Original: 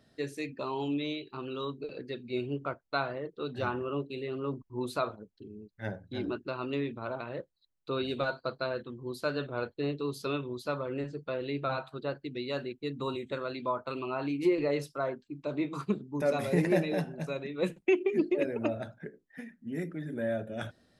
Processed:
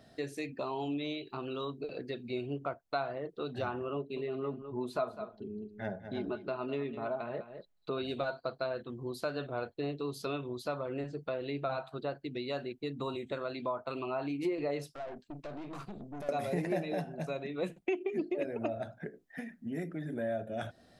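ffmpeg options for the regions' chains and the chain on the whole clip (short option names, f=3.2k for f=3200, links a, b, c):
-filter_complex "[0:a]asettb=1/sr,asplit=3[a][b][c];[a]atrim=end=3.964[d];[b]atrim=start=3.96:end=7.98,asetpts=PTS-STARTPTS,afade=t=in:d=0.004:c=qsin,afade=t=out:st=4.016:d=0.004:c=qsin,highshelf=f=4.1k:g=-9,aecho=1:1:4.8:0.43,atrim=end_sample=177282,aecho=1:1:203:0.211,atrim=end_sample=177282[e];[c]atrim=start=7.976[f];[d][e]acrossfade=d=0.004:c1=hsin:c2=qsin[g];[g][f]acrossfade=d=0.004:c1=qsin:c2=hsin,asettb=1/sr,asplit=3[h][i][j];[h]atrim=end=14.904[k];[i]atrim=start=14.9:end=16.29,asetpts=PTS-STARTPTS,afade=t=in:d=0.004:c=qsin,afade=t=out:st=1.386:d=0.004:c=qsin,acompressor=threshold=-37dB:ratio=5:attack=3.2:release=140:knee=1:detection=peak,aeval=exprs='(tanh(158*val(0)+0.55)-tanh(0.55))/158':c=same[l];[j]atrim=start=16.286[m];[k][l]acrossfade=d=0.004:c1=hsin:c2=qsin[n];[n][m]acrossfade=d=0.004:c1=qsin:c2=hsin,equalizer=f=700:t=o:w=0.3:g=9,acompressor=threshold=-44dB:ratio=2,volume=4.5dB"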